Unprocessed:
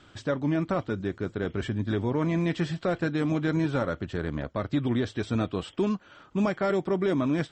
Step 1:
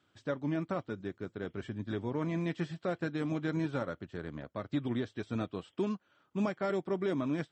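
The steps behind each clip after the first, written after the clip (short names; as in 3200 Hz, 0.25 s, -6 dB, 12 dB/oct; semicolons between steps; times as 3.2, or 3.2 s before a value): HPF 94 Hz; upward expander 1.5:1, over -46 dBFS; gain -5.5 dB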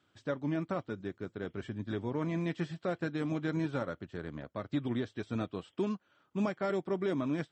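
nothing audible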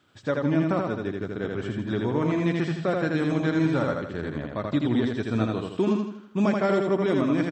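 feedback echo 81 ms, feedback 44%, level -3 dB; gain +8 dB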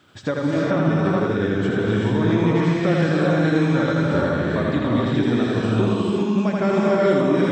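compressor 3:1, threshold -31 dBFS, peak gain reduction 10 dB; non-linear reverb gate 0.45 s rising, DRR -3.5 dB; gain +8.5 dB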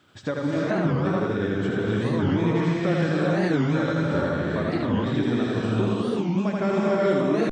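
record warp 45 rpm, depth 250 cents; gain -4 dB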